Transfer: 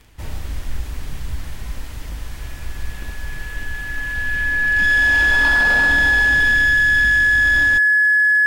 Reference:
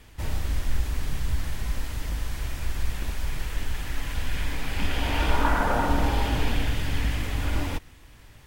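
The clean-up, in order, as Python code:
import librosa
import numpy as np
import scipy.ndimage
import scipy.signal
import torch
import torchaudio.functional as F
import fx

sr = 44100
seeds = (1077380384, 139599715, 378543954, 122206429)

y = fx.fix_declip(x, sr, threshold_db=-11.5)
y = fx.fix_declick_ar(y, sr, threshold=6.5)
y = fx.notch(y, sr, hz=1700.0, q=30.0)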